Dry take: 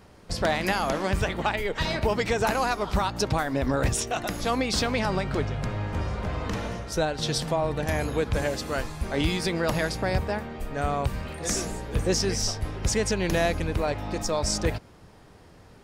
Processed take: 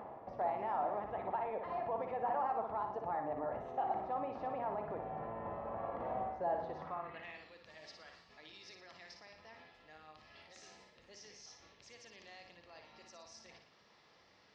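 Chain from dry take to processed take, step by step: octave divider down 1 oct, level -3 dB; peaking EQ 1.5 kHz +4 dB 0.35 oct; band-stop 1.4 kHz, Q 7.3; reverse; compression 6:1, threshold -36 dBFS, peak gain reduction 17.5 dB; reverse; peak limiter -31.5 dBFS, peak gain reduction 6 dB; upward compressor, threshold -44 dBFS; band-pass sweep 720 Hz -> 4.6 kHz, 7.27–8.16 s; on a send: flutter echo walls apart 10.8 m, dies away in 0.61 s; on the sum: speed mistake 44.1 kHz file played as 48 kHz; tape spacing loss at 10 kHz 38 dB; trim +11.5 dB

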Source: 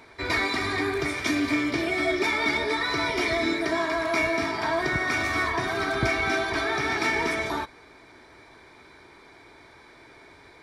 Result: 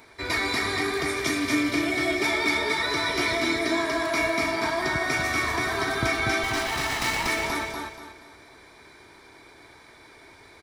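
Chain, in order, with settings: 6.43–7.27 s: comb filter that takes the minimum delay 1 ms; treble shelf 6.6 kHz +10.5 dB; on a send: feedback delay 239 ms, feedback 32%, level -3.5 dB; on the sum: trim -2 dB

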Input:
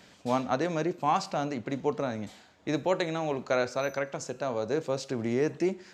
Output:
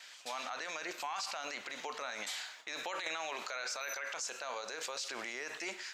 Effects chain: high-pass 1.5 kHz 12 dB/octave; gate with hold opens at -58 dBFS; level rider gain up to 10 dB; peak limiter -35.5 dBFS, peak gain reduction 25 dB; 3.06–3.48 s: three bands compressed up and down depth 100%; trim +5.5 dB

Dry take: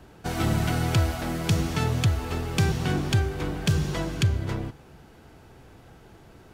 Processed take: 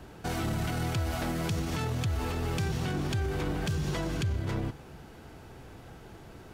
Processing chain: peak limiter -25.5 dBFS, peak gain reduction 11.5 dB; trim +2 dB

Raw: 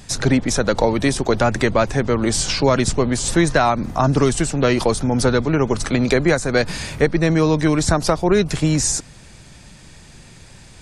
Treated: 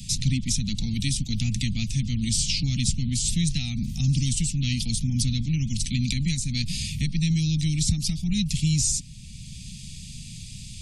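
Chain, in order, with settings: inverse Chebyshev band-stop 360–1600 Hz, stop band 40 dB; three bands compressed up and down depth 40%; trim -2 dB

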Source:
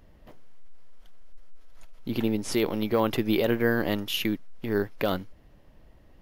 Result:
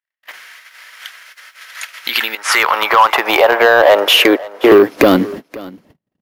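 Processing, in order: gate -46 dBFS, range -59 dB; 2.35–4.72 s: three-band isolator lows -22 dB, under 410 Hz, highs -13 dB, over 2.3 kHz; compression 12:1, threshold -34 dBFS, peak gain reduction 13.5 dB; high-pass sweep 1.8 kHz -> 150 Hz, 2.07–6.07 s; saturation -32.5 dBFS, distortion -11 dB; delay 528 ms -20.5 dB; loudness maximiser +32.5 dB; trim -1 dB

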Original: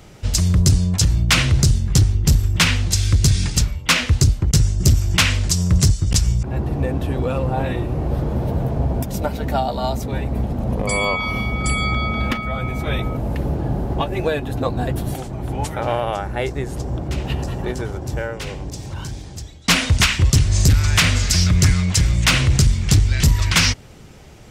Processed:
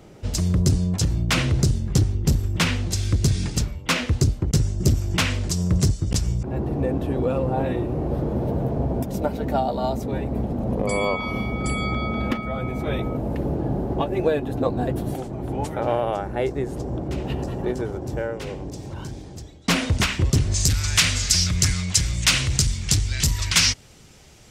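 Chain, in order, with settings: peaking EQ 360 Hz +9.5 dB 2.7 oct, from 20.54 s 7 kHz; trim -8 dB

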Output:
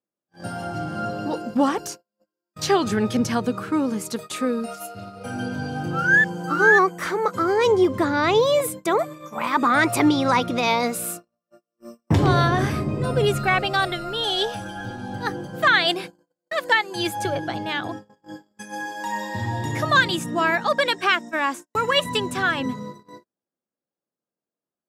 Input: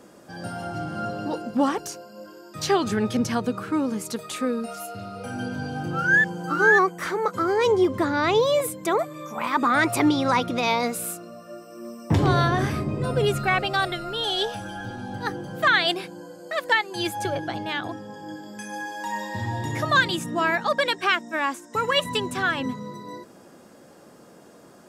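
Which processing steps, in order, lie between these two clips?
gate -35 dBFS, range -45 dB; trim +2 dB

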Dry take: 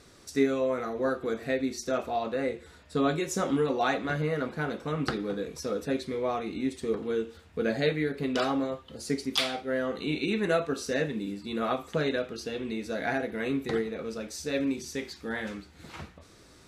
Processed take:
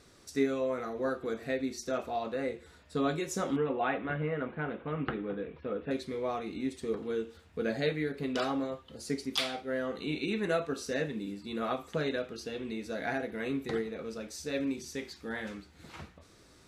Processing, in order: 3.56–5.91 s: steep low-pass 3.2 kHz 48 dB/octave; trim -4 dB

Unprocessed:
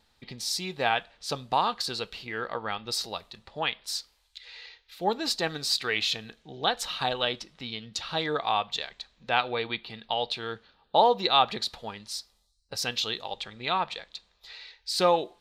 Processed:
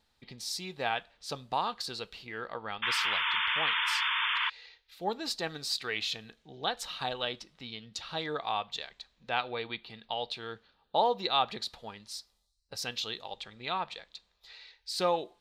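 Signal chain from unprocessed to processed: painted sound noise, 2.82–4.50 s, 880–3600 Hz -24 dBFS; trim -6 dB

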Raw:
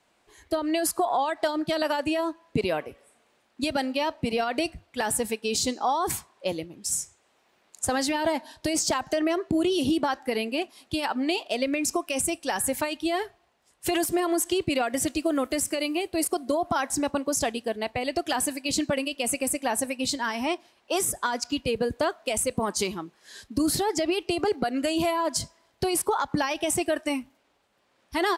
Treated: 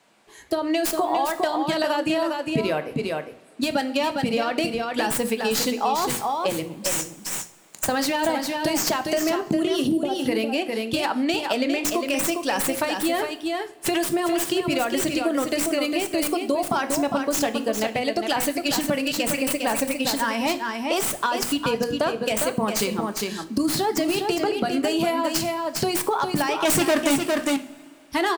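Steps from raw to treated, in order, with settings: tracing distortion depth 0.075 ms; 9.88–10.20 s: time-frequency box 810–8300 Hz -19 dB; 26.65–27.16 s: waveshaping leveller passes 5; resonant low shelf 110 Hz -8.5 dB, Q 1.5; hum notches 60/120/180/240/300/360/420/480/540 Hz; on a send: delay 405 ms -6.5 dB; on the sum: two-slope reverb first 0.36 s, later 2.4 s, from -21 dB, DRR 10 dB; compression 2.5:1, threshold -28 dBFS, peak gain reduction 9 dB; trim +6.5 dB

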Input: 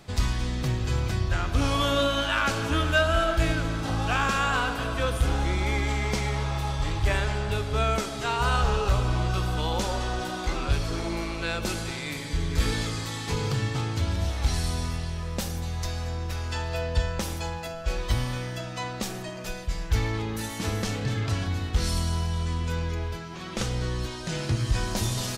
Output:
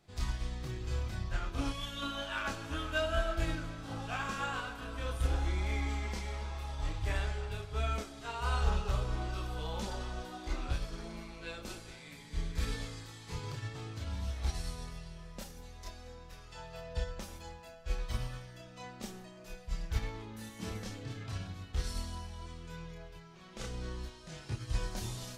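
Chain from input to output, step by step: chorus voices 6, 0.21 Hz, delay 29 ms, depth 3.3 ms; time-frequency box 1.72–2.03 s, 230–1600 Hz -8 dB; upward expansion 1.5:1, over -37 dBFS; trim -5 dB

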